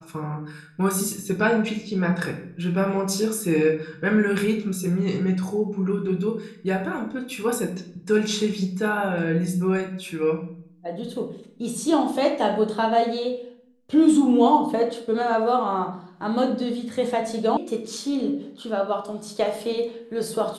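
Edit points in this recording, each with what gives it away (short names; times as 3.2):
17.57 sound cut off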